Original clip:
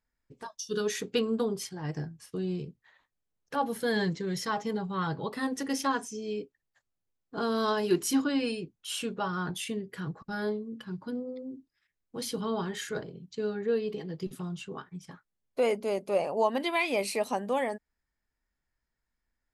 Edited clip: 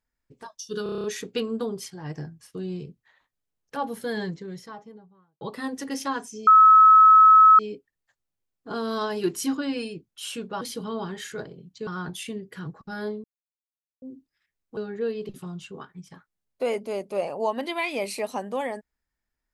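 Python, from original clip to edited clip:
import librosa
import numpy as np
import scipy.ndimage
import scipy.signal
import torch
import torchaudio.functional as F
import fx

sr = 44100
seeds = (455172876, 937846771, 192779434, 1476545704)

y = fx.studio_fade_out(x, sr, start_s=3.58, length_s=1.62)
y = fx.edit(y, sr, fx.stutter(start_s=0.83, slice_s=0.03, count=8),
    fx.insert_tone(at_s=6.26, length_s=1.12, hz=1290.0, db=-9.5),
    fx.silence(start_s=10.65, length_s=0.78),
    fx.move(start_s=12.18, length_s=1.26, to_s=9.28),
    fx.cut(start_s=13.96, length_s=0.3), tone=tone)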